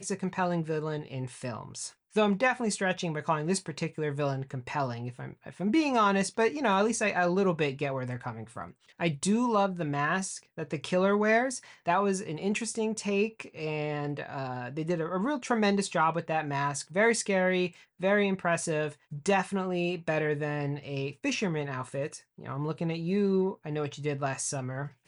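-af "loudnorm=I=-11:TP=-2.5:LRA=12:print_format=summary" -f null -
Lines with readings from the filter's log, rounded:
Input Integrated:    -29.9 LUFS
Input True Peak:     -15.0 dBTP
Input LRA:             3.9 LU
Input Threshold:     -40.1 LUFS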